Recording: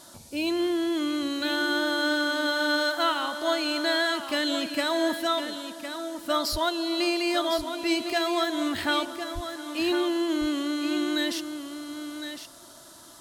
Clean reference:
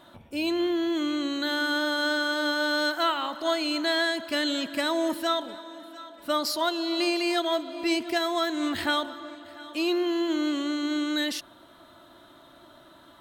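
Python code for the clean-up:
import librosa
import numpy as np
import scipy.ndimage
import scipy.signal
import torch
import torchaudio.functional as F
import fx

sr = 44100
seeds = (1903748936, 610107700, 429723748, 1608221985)

y = fx.highpass(x, sr, hz=140.0, slope=24, at=(6.51, 6.63), fade=0.02)
y = fx.highpass(y, sr, hz=140.0, slope=24, at=(9.34, 9.46), fade=0.02)
y = fx.noise_reduce(y, sr, print_start_s=12.69, print_end_s=13.19, reduce_db=12.0)
y = fx.fix_echo_inverse(y, sr, delay_ms=1058, level_db=-9.0)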